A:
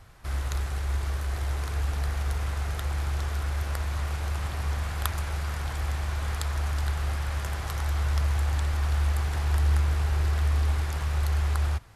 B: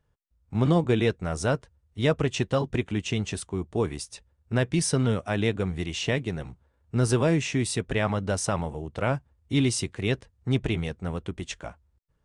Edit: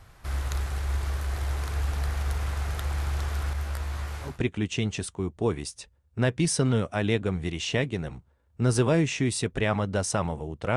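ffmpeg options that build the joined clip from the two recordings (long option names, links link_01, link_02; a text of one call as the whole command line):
ffmpeg -i cue0.wav -i cue1.wav -filter_complex "[0:a]asettb=1/sr,asplit=3[link_01][link_02][link_03];[link_01]atrim=end=3.534[link_04];[link_02]atrim=start=3.53:end=4.4,asetpts=PTS-STARTPTS,afade=type=in:duration=0.004:curve=qsin,afade=type=out:start_time=0.866:duration=0.004:curve=qsin,flanger=delay=16:depth=7.3:speed=0.3[link_05];[link_03]atrim=start=4.396[link_06];[link_04][link_05]acrossfade=duration=0.004:curve1=hsin:curve2=qsin[link_07];[link_07][link_06]acrossfade=duration=0.004:curve1=qsin:curve2=hsin,apad=whole_dur=10.76,atrim=end=10.76,atrim=end=4.4,asetpts=PTS-STARTPTS[link_08];[1:a]atrim=start=2.56:end=9.1,asetpts=PTS-STARTPTS[link_09];[link_08][link_09]acrossfade=duration=0.18:curve1=tri:curve2=tri" out.wav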